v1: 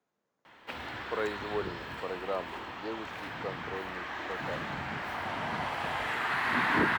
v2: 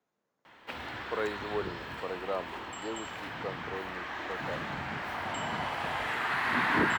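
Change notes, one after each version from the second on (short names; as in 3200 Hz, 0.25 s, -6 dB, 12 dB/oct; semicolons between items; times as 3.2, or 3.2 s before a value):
second sound: unmuted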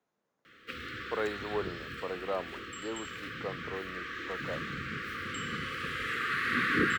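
first sound: add brick-wall FIR band-stop 540–1100 Hz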